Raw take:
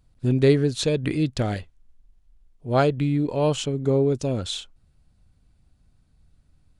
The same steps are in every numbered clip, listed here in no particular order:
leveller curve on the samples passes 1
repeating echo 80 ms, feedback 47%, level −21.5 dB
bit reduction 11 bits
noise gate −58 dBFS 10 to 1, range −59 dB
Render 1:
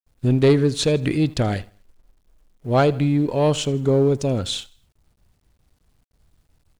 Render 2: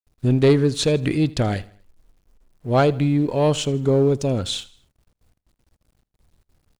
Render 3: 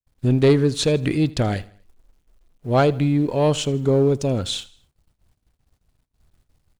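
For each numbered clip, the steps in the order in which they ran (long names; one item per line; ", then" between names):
repeating echo, then noise gate, then bit reduction, then leveller curve on the samples
leveller curve on the samples, then noise gate, then bit reduction, then repeating echo
bit reduction, then leveller curve on the samples, then noise gate, then repeating echo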